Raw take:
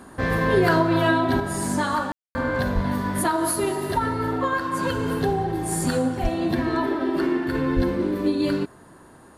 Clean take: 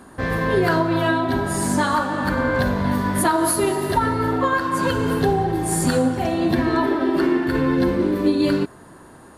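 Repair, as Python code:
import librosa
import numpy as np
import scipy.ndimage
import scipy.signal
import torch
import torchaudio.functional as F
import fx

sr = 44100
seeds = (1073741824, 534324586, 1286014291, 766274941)

y = fx.highpass(x, sr, hz=140.0, slope=24, at=(2.74, 2.86), fade=0.02)
y = fx.highpass(y, sr, hz=140.0, slope=24, at=(6.22, 6.34), fade=0.02)
y = fx.highpass(y, sr, hz=140.0, slope=24, at=(7.75, 7.87), fade=0.02)
y = fx.fix_ambience(y, sr, seeds[0], print_start_s=8.84, print_end_s=9.34, start_s=2.12, end_s=2.35)
y = fx.gain(y, sr, db=fx.steps((0.0, 0.0), (1.4, 4.0)))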